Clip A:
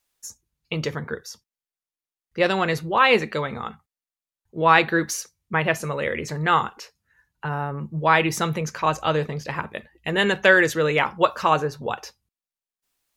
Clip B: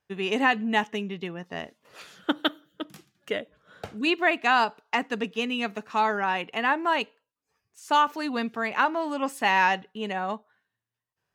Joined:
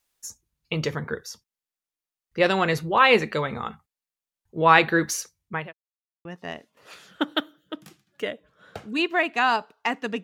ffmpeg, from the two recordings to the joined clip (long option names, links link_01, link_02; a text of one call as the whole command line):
ffmpeg -i cue0.wav -i cue1.wav -filter_complex "[0:a]apad=whole_dur=10.23,atrim=end=10.23,asplit=2[link_01][link_02];[link_01]atrim=end=5.73,asetpts=PTS-STARTPTS,afade=type=out:start_time=5.17:duration=0.56:curve=qsin[link_03];[link_02]atrim=start=5.73:end=6.25,asetpts=PTS-STARTPTS,volume=0[link_04];[1:a]atrim=start=1.33:end=5.31,asetpts=PTS-STARTPTS,afade=type=in:duration=0.004:curve=hsin[link_05];[link_03][link_04][link_05]concat=n=3:v=0:a=1" out.wav